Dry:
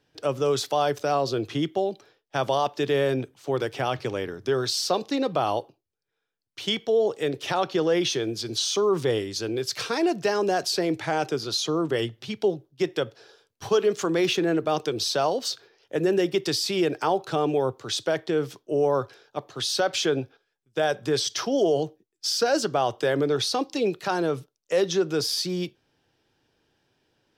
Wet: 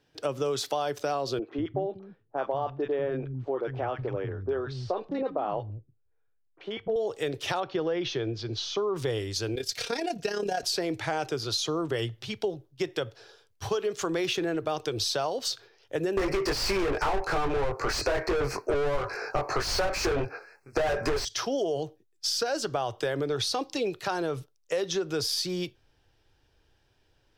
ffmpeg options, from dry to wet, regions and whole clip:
-filter_complex "[0:a]asettb=1/sr,asplit=3[s0][s1][s2];[s0]atrim=end=1.394[s3];[s1]atrim=start=1.39:end=6.96,asetpts=PTS-STARTPTS,afade=t=in:d=0.004:c=qsin,afade=t=out:st=5.566:d=0.004:c=qsin,lowpass=1400,acrossover=split=210|1100[s4][s5][s6];[s6]adelay=30[s7];[s4]adelay=190[s8];[s8][s5][s7]amix=inputs=3:normalize=0,atrim=end_sample=245637[s9];[s2]atrim=start=6.956[s10];[s3][s9]acrossfade=d=0.004:c1=hsin:c2=qsin[s11];[s11][s10]acrossfade=d=0.004:c1=qsin:c2=hsin,asettb=1/sr,asplit=3[s12][s13][s14];[s12]atrim=end=7.604[s15];[s13]atrim=start=7.6:end=8.96,asetpts=PTS-STARTPTS,afade=t=in:d=0.004:c=qsin,afade=t=out:st=1.356:d=0.004:c=qsin,lowpass=f=6000:w=0.5412,lowpass=f=6000:w=1.3066,aemphasis=mode=reproduction:type=75kf[s16];[s14]atrim=start=8.956[s17];[s15][s16]acrossfade=d=0.004:c1=hsin:c2=qsin[s18];[s18][s17]acrossfade=d=0.004:c1=qsin:c2=hsin,asettb=1/sr,asplit=3[s19][s20][s21];[s19]atrim=end=9.554[s22];[s20]atrim=start=9.55:end=10.63,asetpts=PTS-STARTPTS,afade=t=in:d=0.004:c=qsin,afade=t=out:st=1.076:d=0.004:c=qsin,equalizer=f=1100:t=o:w=0.53:g=-10.5,aecho=1:1:4.2:0.62,atrim=end_sample=47628,tremolo=f=34:d=0.621[s23];[s21]atrim=start=10.626[s24];[s22][s23]acrossfade=d=0.004:c1=hsin:c2=qsin[s25];[s25][s24]acrossfade=d=0.004:c1=qsin:c2=hsin,asettb=1/sr,asplit=3[s26][s27][s28];[s26]atrim=end=16.174[s29];[s27]atrim=start=16.17:end=21.25,asetpts=PTS-STARTPTS,afade=t=in:d=0.004:c=qsin,afade=t=out:st=5.076:d=0.004:c=qsin,asuperstop=centerf=3300:order=12:qfactor=2.2,asplit=2[s30][s31];[s31]adelay=21,volume=0.708[s32];[s30][s32]amix=inputs=2:normalize=0,atrim=end_sample=224028,asplit=2[s33][s34];[s34]highpass=f=720:p=1,volume=50.1,asoftclip=type=tanh:threshold=0.398[s35];[s33][s35]amix=inputs=2:normalize=0,lowpass=f=1500:p=1,volume=0.501[s36];[s28]atrim=start=21.246[s37];[s29][s36]acrossfade=d=0.004:c1=hsin:c2=qsin[s38];[s38][s37]acrossfade=d=0.004:c1=qsin:c2=hsin,asubboost=boost=10:cutoff=60,acompressor=threshold=0.0562:ratio=6"

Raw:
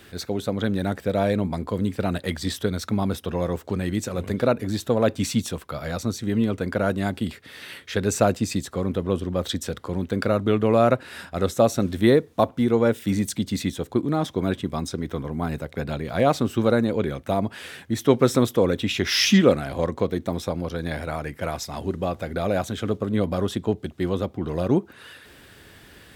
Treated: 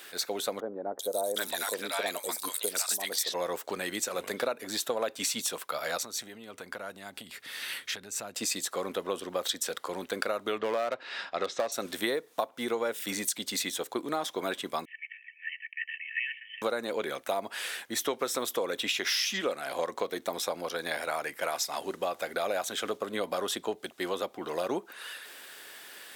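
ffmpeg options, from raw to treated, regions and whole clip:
-filter_complex "[0:a]asettb=1/sr,asplit=3[s0][s1][s2];[s0]atrim=end=0.604[s3];[s1]atrim=start=0.6:end=3.34,asetpts=PTS-STARTPTS,afade=t=in:d=0.004:c=qsin,afade=t=out:st=2.736:d=0.004:c=qsin,bass=f=250:g=-10,treble=f=4000:g=12,acrossover=split=860|4700[s4][s5][s6];[s6]adelay=390[s7];[s5]adelay=760[s8];[s4][s8][s7]amix=inputs=3:normalize=0,atrim=end_sample=120834[s9];[s2]atrim=start=3.336[s10];[s3][s9]acrossfade=d=0.004:c1=hsin:c2=qsin[s11];[s11][s10]acrossfade=d=0.004:c1=qsin:c2=hsin,asettb=1/sr,asplit=3[s12][s13][s14];[s12]atrim=end=5.974[s15];[s13]atrim=start=5.97:end=8.36,asetpts=PTS-STARTPTS,afade=t=in:d=0.004:c=qsin,afade=t=out:st=2.386:d=0.004:c=qsin,asubboost=boost=8.5:cutoff=200,acompressor=threshold=0.0282:ratio=5:attack=3.2:release=140:knee=1:detection=peak[s16];[s14]atrim=start=8.356[s17];[s15][s16]acrossfade=d=0.004:c1=hsin:c2=qsin[s18];[s18][s17]acrossfade=d=0.004:c1=qsin:c2=hsin,asettb=1/sr,asplit=3[s19][s20][s21];[s19]atrim=end=10.584[s22];[s20]atrim=start=10.58:end=11.72,asetpts=PTS-STARTPTS,afade=t=in:d=0.004:c=qsin,afade=t=out:st=1.136:d=0.004:c=qsin,lowpass=f=5100:w=0.5412,lowpass=f=5100:w=1.3066,bandreject=f=1500:w=15,volume=4.22,asoftclip=hard,volume=0.237[s23];[s21]atrim=start=11.716[s24];[s22][s23]acrossfade=d=0.004:c1=hsin:c2=qsin[s25];[s25][s24]acrossfade=d=0.004:c1=qsin:c2=hsin,asettb=1/sr,asplit=3[s26][s27][s28];[s26]atrim=end=14.854[s29];[s27]atrim=start=14.85:end=16.62,asetpts=PTS-STARTPTS,afade=t=in:d=0.004:c=qsin,afade=t=out:st=1.766:d=0.004:c=qsin,asuperpass=centerf=2000:order=20:qfactor=1.5,aecho=1:1:2.6:0.72,atrim=end_sample=78057,afreqshift=300[s30];[s28]atrim=start=16.616[s31];[s29][s30]acrossfade=d=0.004:c1=hsin:c2=qsin[s32];[s32][s31]acrossfade=d=0.004:c1=qsin:c2=hsin,highpass=590,highshelf=f=5700:g=7,acompressor=threshold=0.0398:ratio=10,volume=1.19"

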